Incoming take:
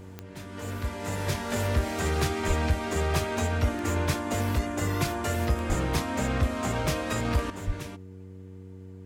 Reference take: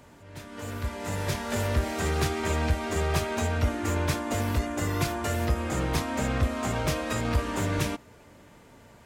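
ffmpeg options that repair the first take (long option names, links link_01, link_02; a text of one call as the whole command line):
ffmpeg -i in.wav -filter_complex "[0:a]adeclick=threshold=4,bandreject=frequency=94.1:width_type=h:width=4,bandreject=frequency=188.2:width_type=h:width=4,bandreject=frequency=282.3:width_type=h:width=4,bandreject=frequency=376.4:width_type=h:width=4,bandreject=frequency=470.5:width_type=h:width=4,asplit=3[link_01][link_02][link_03];[link_01]afade=type=out:start_time=2.47:duration=0.02[link_04];[link_02]highpass=frequency=140:width=0.5412,highpass=frequency=140:width=1.3066,afade=type=in:start_time=2.47:duration=0.02,afade=type=out:start_time=2.59:duration=0.02[link_05];[link_03]afade=type=in:start_time=2.59:duration=0.02[link_06];[link_04][link_05][link_06]amix=inputs=3:normalize=0,asplit=3[link_07][link_08][link_09];[link_07]afade=type=out:start_time=5.68:duration=0.02[link_10];[link_08]highpass=frequency=140:width=0.5412,highpass=frequency=140:width=1.3066,afade=type=in:start_time=5.68:duration=0.02,afade=type=out:start_time=5.8:duration=0.02[link_11];[link_09]afade=type=in:start_time=5.8:duration=0.02[link_12];[link_10][link_11][link_12]amix=inputs=3:normalize=0,asplit=3[link_13][link_14][link_15];[link_13]afade=type=out:start_time=7.66:duration=0.02[link_16];[link_14]highpass=frequency=140:width=0.5412,highpass=frequency=140:width=1.3066,afade=type=in:start_time=7.66:duration=0.02,afade=type=out:start_time=7.78:duration=0.02[link_17];[link_15]afade=type=in:start_time=7.78:duration=0.02[link_18];[link_16][link_17][link_18]amix=inputs=3:normalize=0,asetnsamples=nb_out_samples=441:pad=0,asendcmd='7.5 volume volume 10.5dB',volume=0dB" out.wav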